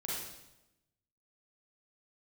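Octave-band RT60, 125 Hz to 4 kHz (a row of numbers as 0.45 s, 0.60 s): 1.2 s, 1.1 s, 1.0 s, 0.90 s, 0.85 s, 0.85 s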